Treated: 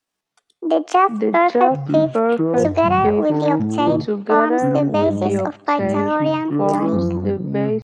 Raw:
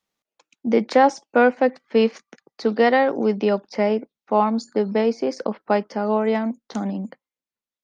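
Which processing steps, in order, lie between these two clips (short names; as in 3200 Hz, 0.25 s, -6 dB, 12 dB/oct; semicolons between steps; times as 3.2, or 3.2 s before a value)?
treble ducked by the level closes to 1300 Hz, closed at -12.5 dBFS; echoes that change speed 0.13 s, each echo -7 st, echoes 3; on a send at -21.5 dB: reverb, pre-delay 3 ms; on the sum: pitch shift +6 st; ending taper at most 600 dB/s; gain +1 dB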